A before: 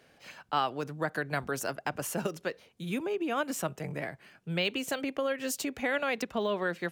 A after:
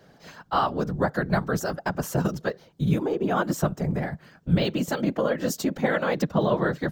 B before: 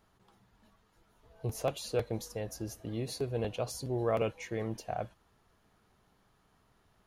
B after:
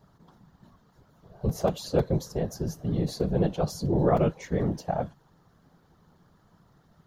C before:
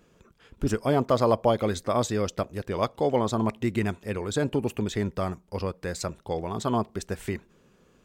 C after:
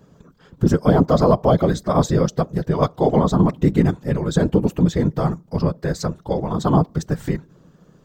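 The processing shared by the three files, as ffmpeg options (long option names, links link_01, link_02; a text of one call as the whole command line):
ffmpeg -i in.wav -af "apsyclip=13.5dB,afftfilt=real='hypot(re,im)*cos(2*PI*random(0))':imag='hypot(re,im)*sin(2*PI*random(1))':win_size=512:overlap=0.75,equalizer=frequency=160:width_type=o:width=0.67:gain=10,equalizer=frequency=2500:width_type=o:width=0.67:gain=-11,equalizer=frequency=10000:width_type=o:width=0.67:gain=-11,volume=-1dB" out.wav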